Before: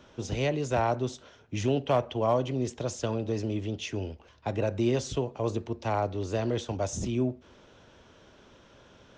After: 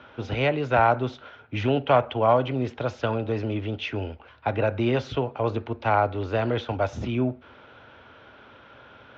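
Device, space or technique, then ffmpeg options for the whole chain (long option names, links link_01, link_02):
guitar cabinet: -af "highpass=76,equalizer=frequency=180:width_type=q:width=4:gain=-9,equalizer=frequency=360:width_type=q:width=4:gain=-4,equalizer=frequency=820:width_type=q:width=4:gain=4,equalizer=frequency=1400:width_type=q:width=4:gain=9,equalizer=frequency=2300:width_type=q:width=4:gain=4,lowpass=frequency=3700:width=0.5412,lowpass=frequency=3700:width=1.3066,volume=5dB"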